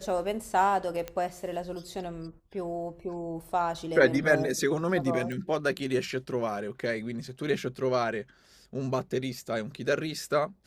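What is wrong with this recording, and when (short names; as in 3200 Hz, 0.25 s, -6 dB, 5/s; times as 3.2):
1.08 pop -20 dBFS
5.32 pop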